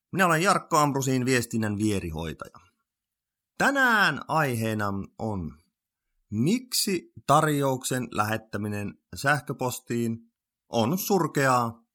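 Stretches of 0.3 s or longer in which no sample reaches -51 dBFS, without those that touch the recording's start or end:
2.67–3.6
5.57–6.31
10.22–10.7

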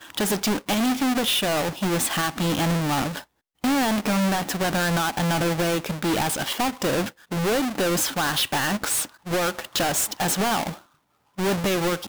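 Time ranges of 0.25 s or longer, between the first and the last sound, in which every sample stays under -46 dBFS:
3.24–3.64
10.82–11.38

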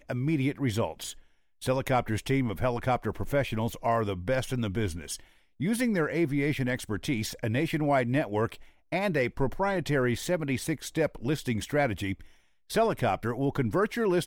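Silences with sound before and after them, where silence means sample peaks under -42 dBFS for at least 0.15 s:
1.13–1.62
5.2–5.6
8.63–8.92
12.25–12.7

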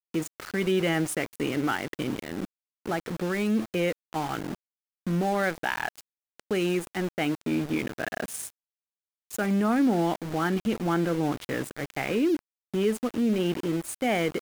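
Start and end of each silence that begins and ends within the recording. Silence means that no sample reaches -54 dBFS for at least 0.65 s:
8.5–9.31

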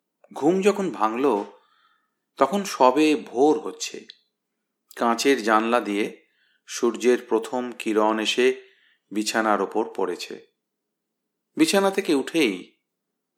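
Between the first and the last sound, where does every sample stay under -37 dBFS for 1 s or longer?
10.38–11.57

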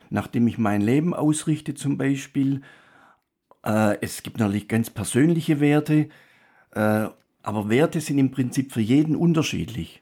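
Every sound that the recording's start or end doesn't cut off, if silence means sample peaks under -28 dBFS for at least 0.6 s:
3.66–6.04

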